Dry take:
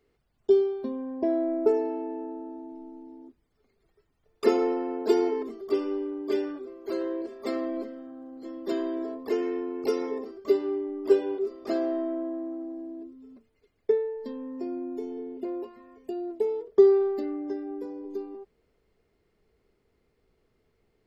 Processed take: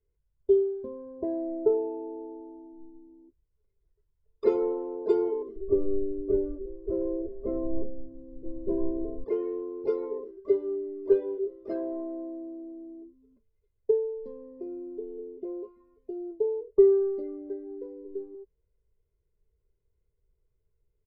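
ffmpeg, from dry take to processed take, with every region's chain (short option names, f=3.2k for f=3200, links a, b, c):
-filter_complex "[0:a]asettb=1/sr,asplit=3[a][b][c];[a]atrim=end=5.564[d];[b]atrim=start=5.56:end=9.24,asetpts=PTS-STARTPTS,afade=t=in:d=0.004:c=qsin,afade=t=out:st=3.676:d=0.004:c=qsin,lowpass=f=1.1k:p=1,aemphasis=mode=reproduction:type=riaa[e];[c]atrim=start=9.236[f];[d][e]acrossfade=d=0.004:c1=hsin:c2=qsin[g];[g][f]acrossfade=d=0.004:c1=qsin:c2=hsin,afftdn=nr=13:nf=-37,aemphasis=mode=reproduction:type=riaa,aecho=1:1:2:0.75,volume=-8dB"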